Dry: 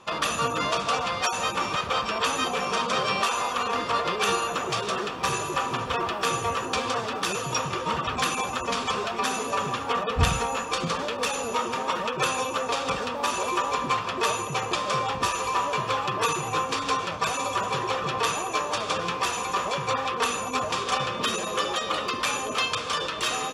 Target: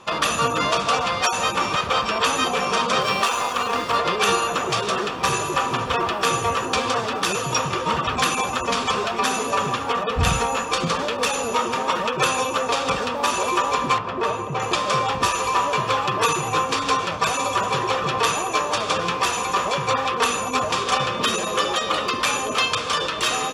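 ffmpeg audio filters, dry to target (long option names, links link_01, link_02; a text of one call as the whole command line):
ffmpeg -i in.wav -filter_complex "[0:a]asettb=1/sr,asplit=3[link_01][link_02][link_03];[link_01]atrim=end=3.014[link_04];[link_02]atrim=start=3.01:end=3.97,asetpts=PTS-STARTPTS,afade=type=in:duration=0.004:curve=qsin,afade=type=out:start_time=0.956:duration=0.004:curve=qsin,aeval=exprs='sgn(val(0))*max(abs(val(0))-0.00841,0)':channel_layout=same[link_05];[link_03]atrim=start=3.966[link_06];[link_04][link_05]acrossfade=duration=0.004:curve1=hsin:curve2=qsin[link_07];[link_07][link_06]acrossfade=duration=0.004:curve1=qsin:curve2=hsin,asplit=3[link_08][link_09][link_10];[link_08]afade=type=out:start_time=9.75:duration=0.02[link_11];[link_09]acompressor=threshold=-25dB:ratio=2,afade=type=in:start_time=9.75:duration=0.02,afade=type=out:start_time=10.24:duration=0.02[link_12];[link_10]afade=type=in:start_time=10.24:duration=0.02[link_13];[link_11][link_12][link_13]amix=inputs=3:normalize=0,asettb=1/sr,asplit=3[link_14][link_15][link_16];[link_14]atrim=end=13.984[link_17];[link_15]atrim=start=13.98:end=14.6,asetpts=PTS-STARTPTS,afade=type=in:duration=0.004:curve=qsin,afade=type=out:start_time=0.616:duration=0.004:curve=qsin,lowpass=frequency=1100:poles=1[link_18];[link_16]atrim=start=14.596[link_19];[link_17][link_18]acrossfade=duration=0.004:curve1=hsin:curve2=qsin[link_20];[link_20][link_19]acrossfade=duration=0.004:curve1=qsin:curve2=hsin,volume=5dB" out.wav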